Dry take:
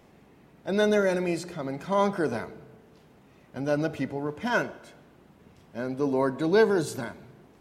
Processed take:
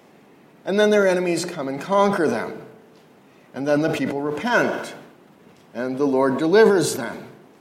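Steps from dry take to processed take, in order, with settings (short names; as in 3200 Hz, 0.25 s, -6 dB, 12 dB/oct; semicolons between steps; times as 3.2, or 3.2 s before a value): HPF 190 Hz 12 dB/oct; sustainer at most 61 dB/s; gain +6.5 dB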